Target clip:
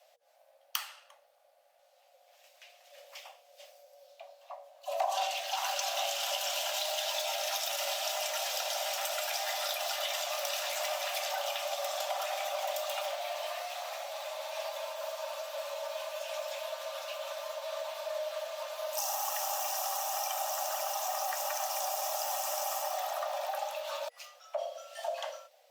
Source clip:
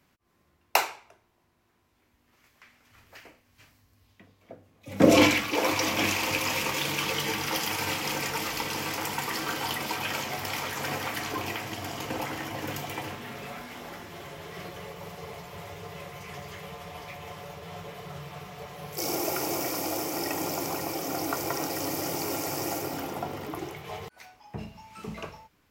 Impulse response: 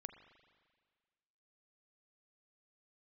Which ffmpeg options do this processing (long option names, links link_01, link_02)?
-af "equalizer=frequency=125:width_type=o:width=1:gain=5,equalizer=frequency=250:width_type=o:width=1:gain=4,equalizer=frequency=500:width_type=o:width=1:gain=-6,equalizer=frequency=1000:width_type=o:width=1:gain=-8,equalizer=frequency=2000:width_type=o:width=1:gain=-3,equalizer=frequency=4000:width_type=o:width=1:gain=3,acompressor=threshold=-34dB:ratio=5,afreqshift=470,volume=3dB" -ar 48000 -c:a libopus -b:a 48k